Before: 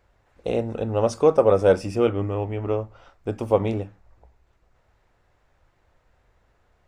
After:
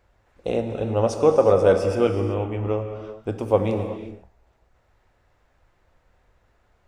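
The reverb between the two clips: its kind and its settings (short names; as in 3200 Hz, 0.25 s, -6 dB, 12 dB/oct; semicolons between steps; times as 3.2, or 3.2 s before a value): non-linear reverb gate 0.41 s flat, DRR 6.5 dB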